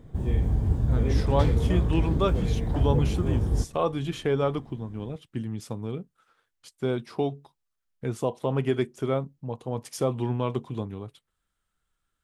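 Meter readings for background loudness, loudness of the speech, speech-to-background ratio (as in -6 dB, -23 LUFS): -26.5 LUFS, -30.0 LUFS, -3.5 dB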